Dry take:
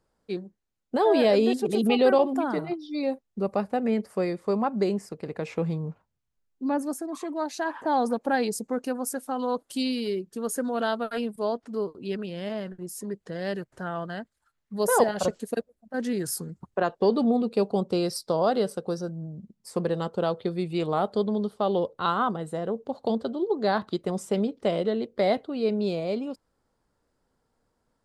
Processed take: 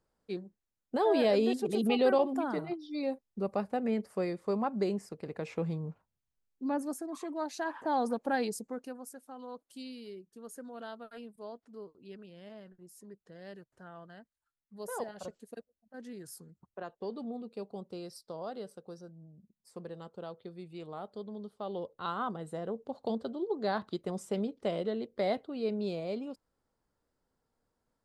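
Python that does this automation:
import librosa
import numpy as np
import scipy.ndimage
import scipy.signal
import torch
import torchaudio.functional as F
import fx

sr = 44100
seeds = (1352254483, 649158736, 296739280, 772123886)

y = fx.gain(x, sr, db=fx.line((8.45, -6.0), (9.14, -17.0), (21.21, -17.0), (22.49, -7.5)))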